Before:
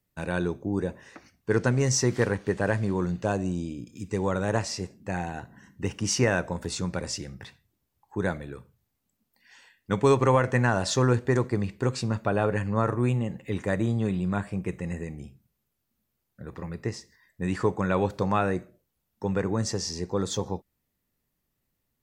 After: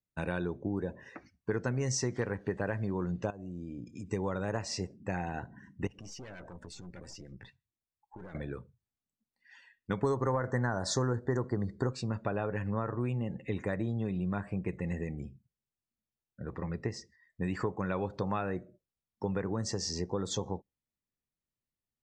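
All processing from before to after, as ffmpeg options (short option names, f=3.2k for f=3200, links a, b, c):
-filter_complex "[0:a]asettb=1/sr,asplit=3[a][b][c];[a]atrim=end=3.304[d];[b]atrim=start=3.3:end=4.08,asetpts=PTS-STARTPTS,afade=t=in:d=0.004:c=qsin,afade=t=out:st=0.776:d=0.004:c=qsin,equalizer=f=4k:t=o:w=0.24:g=-2.5,acompressor=threshold=-36dB:ratio=16:attack=3.2:release=140:knee=1:detection=peak[e];[c]atrim=start=4.076[f];[d][e]acrossfade=d=0.004:c1=hsin:c2=qsin[g];[g][f]acrossfade=d=0.004:c1=qsin:c2=hsin,asettb=1/sr,asplit=3[h][i][j];[h]atrim=end=5.874[k];[i]atrim=start=5.87:end=8.35,asetpts=PTS-STARTPTS,afade=t=in:d=0.004:c=qsin,afade=t=out:st=2.476:d=0.004:c=qsin,aeval=exprs='(tanh(39.8*val(0)+0.65)-tanh(0.65))/39.8':c=same,acrossover=split=1400[l][m];[l]aeval=exprs='val(0)*(1-0.5/2+0.5/2*cos(2*PI*8.8*n/s))':c=same[n];[m]aeval=exprs='val(0)*(1-0.5/2-0.5/2*cos(2*PI*8.8*n/s))':c=same[o];[n][o]amix=inputs=2:normalize=0,acompressor=threshold=-42dB:ratio=6:attack=3.2:release=140:knee=1:detection=peak[p];[j]atrim=start=8.346[q];[k][p]acrossfade=d=0.004:c1=hsin:c2=qsin[r];[r][q]acrossfade=d=0.004:c1=qsin:c2=hsin,asettb=1/sr,asplit=3[s][t][u];[s]atrim=end=10.024[v];[t]atrim=start=10.02:end=11.93,asetpts=PTS-STARTPTS,afade=t=in:d=0.004:c=qsin,afade=t=out:st=1.906:d=0.004:c=qsin,asuperstop=centerf=2700:order=4:qfactor=1.4,acontrast=32[w];[u]atrim=start=11.926[x];[v][w]acrossfade=d=0.004:c1=hsin:c2=qsin[y];[y][x]acrossfade=d=0.004:c1=qsin:c2=hsin,acompressor=threshold=-30dB:ratio=4,afftdn=nr=16:nf=-53,lowpass=9.2k"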